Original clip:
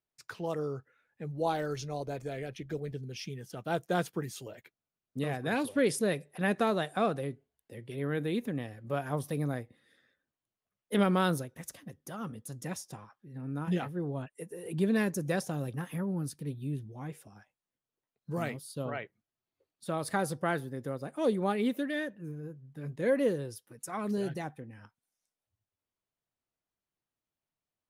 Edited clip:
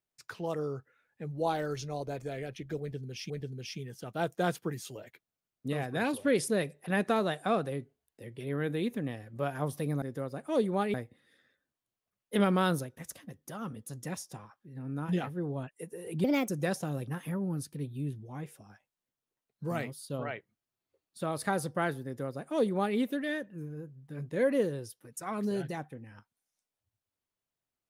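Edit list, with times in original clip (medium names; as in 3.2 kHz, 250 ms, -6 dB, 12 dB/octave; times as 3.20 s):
2.81–3.30 s: loop, 2 plays
14.83–15.15 s: speed 130%
20.71–21.63 s: copy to 9.53 s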